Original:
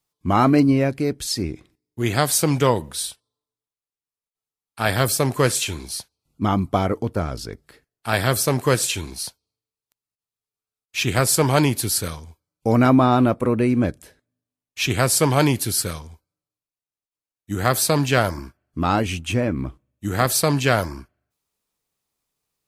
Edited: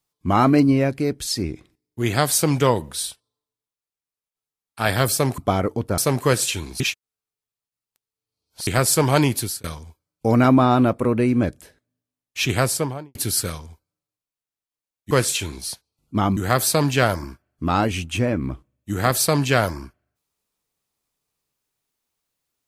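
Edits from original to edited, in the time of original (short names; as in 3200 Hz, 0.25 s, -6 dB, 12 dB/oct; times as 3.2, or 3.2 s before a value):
5.38–6.64 move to 17.52
7.24–8.39 cut
9.21–11.08 reverse
11.8–12.05 fade out
14.96–15.56 studio fade out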